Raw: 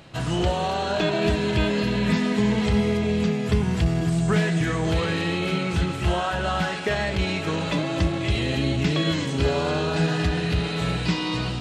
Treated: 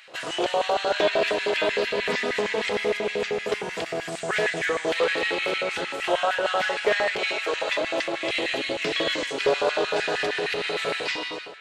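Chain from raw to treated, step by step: fade out at the end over 0.57 s; 7.18–7.81 s: high-pass 380 Hz 12 dB/octave; filtered feedback delay 710 ms, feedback 52%, low-pass 3.2 kHz, level -16.5 dB; LFO high-pass square 6.5 Hz 500–1900 Hz; loudspeaker Doppler distortion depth 0.14 ms

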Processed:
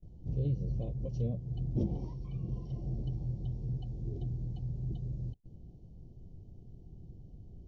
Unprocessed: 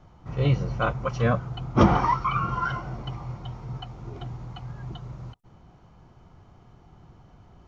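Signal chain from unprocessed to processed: compression 3:1, threshold -32 dBFS, peak gain reduction 15 dB; tilt EQ -2.5 dB/octave; gate with hold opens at -39 dBFS; Chebyshev band-stop 430–4600 Hz, order 2; trim -6 dB

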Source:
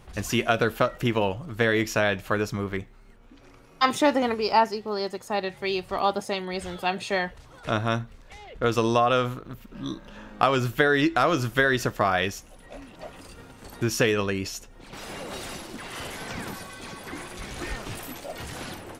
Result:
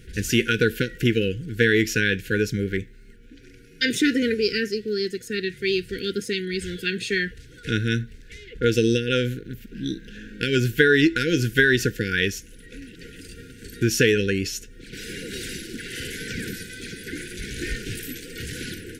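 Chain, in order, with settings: brick-wall FIR band-stop 510–1400 Hz; trim +4.5 dB

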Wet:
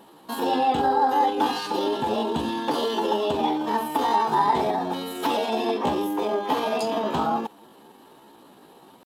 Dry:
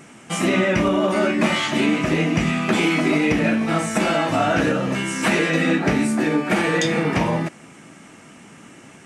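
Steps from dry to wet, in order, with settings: fifteen-band graphic EQ 630 Hz +11 dB, 1.6 kHz -11 dB, 6.3 kHz -6 dB; pitch shift +5.5 st; trim -7 dB

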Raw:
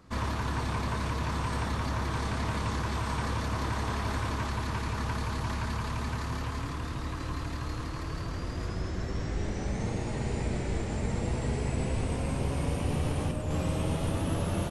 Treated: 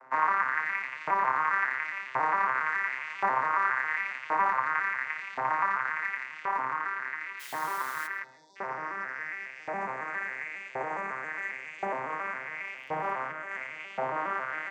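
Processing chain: vocoder on a broken chord minor triad, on C3, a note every 137 ms; 8.24–8.56 s: spectral selection erased 1–3.4 kHz; 12.59–13.11 s: crackle 35 per s -49 dBFS; in parallel at -2 dB: peak limiter -27.5 dBFS, peak gain reduction 7 dB; on the sum: resonant high shelf 2.7 kHz -10 dB, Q 3; 7.39–8.06 s: added noise white -54 dBFS; LFO high-pass saw up 0.93 Hz 750–3200 Hz; on a send at -18 dB: reverberation RT60 0.45 s, pre-delay 105 ms; on the sum: trim +7 dB

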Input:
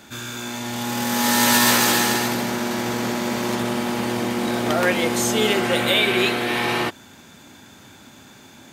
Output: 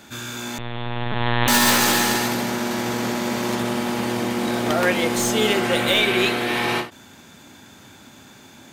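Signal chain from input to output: tracing distortion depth 0.023 ms; 0.58–1.48 s: LPC vocoder at 8 kHz pitch kept; endings held to a fixed fall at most 190 dB/s

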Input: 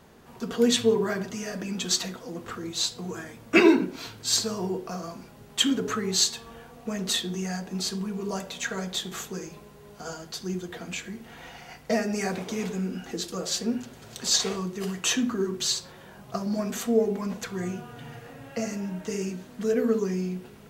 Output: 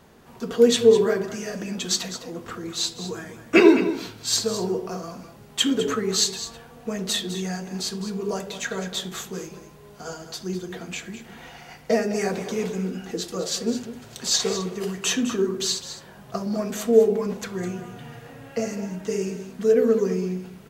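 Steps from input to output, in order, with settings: dynamic bell 460 Hz, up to +7 dB, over -40 dBFS, Q 2.3; on a send: delay 207 ms -12 dB; on the sum: trim +1 dB

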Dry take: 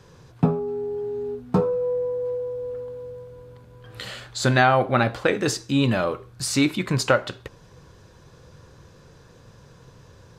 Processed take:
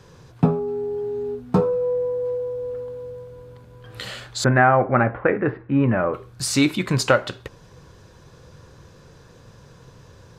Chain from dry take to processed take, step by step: 4.44–6.14 s: steep low-pass 2.1 kHz 36 dB/octave; trim +2 dB

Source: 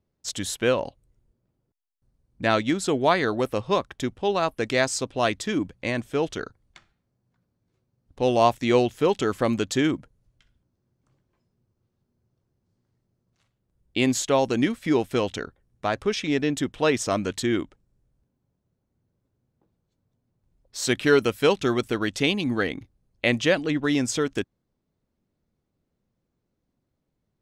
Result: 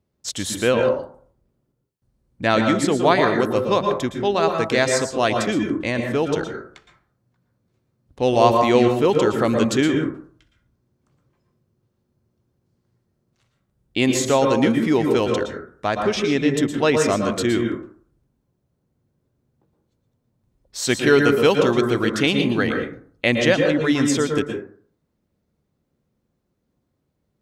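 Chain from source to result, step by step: high-pass 43 Hz; plate-style reverb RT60 0.5 s, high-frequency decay 0.35×, pre-delay 105 ms, DRR 3.5 dB; trim +3 dB

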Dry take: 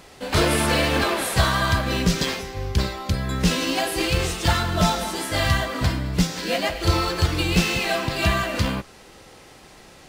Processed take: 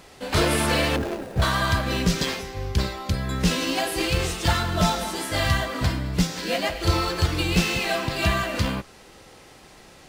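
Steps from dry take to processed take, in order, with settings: 0.96–1.42 s: median filter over 41 samples; trim -1.5 dB

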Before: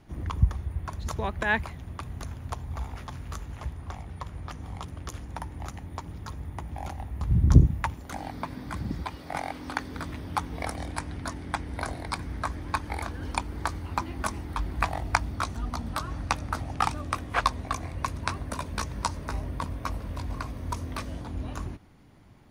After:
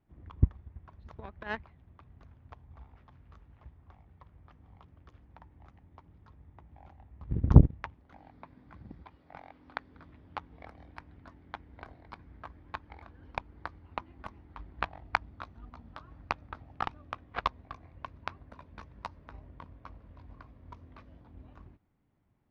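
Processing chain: Chebyshev shaper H 7 -18 dB, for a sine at -2 dBFS; distance through air 310 m

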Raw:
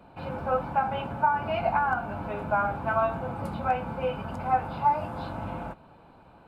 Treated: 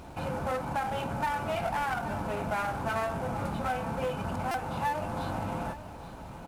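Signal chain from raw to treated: CVSD coder 64 kbps; in parallel at -2 dB: peak limiter -19.5 dBFS, peak gain reduction 7 dB; on the sum: one-sided clip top -26 dBFS; compression 2:1, threshold -33 dBFS, peak gain reduction 8.5 dB; on a send: delay 830 ms -13.5 dB; on the sum: added noise brown -43 dBFS; high-pass 42 Hz; buffer glitch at 4.51 s, samples 128, times 10

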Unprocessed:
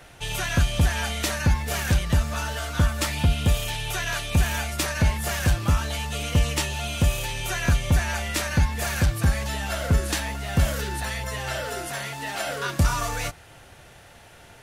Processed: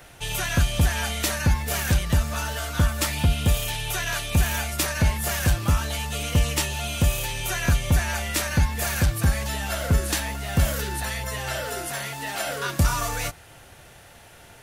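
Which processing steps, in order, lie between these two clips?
treble shelf 11 kHz +9 dB

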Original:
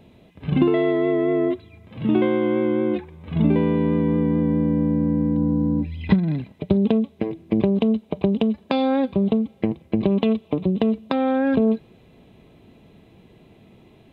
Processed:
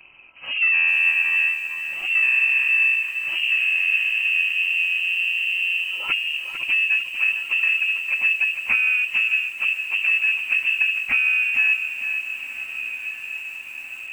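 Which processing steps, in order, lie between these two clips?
frequency axis rescaled in octaves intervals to 91%; low-pass that closes with the level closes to 420 Hz, closed at -18.5 dBFS; resonant low shelf 300 Hz -9 dB, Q 3; saturation -21 dBFS, distortion -13 dB; echo that smears into a reverb 1572 ms, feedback 66%, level -12 dB; frequency inversion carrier 3 kHz; bit-crushed delay 451 ms, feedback 35%, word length 8-bit, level -8 dB; trim +6 dB

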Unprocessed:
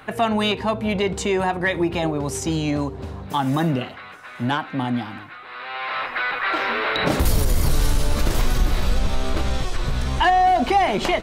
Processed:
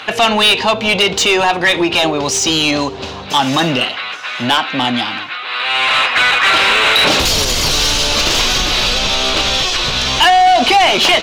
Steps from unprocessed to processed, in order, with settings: high-order bell 4.2 kHz +11.5 dB; overdrive pedal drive 20 dB, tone 3.9 kHz, clips at -1.5 dBFS

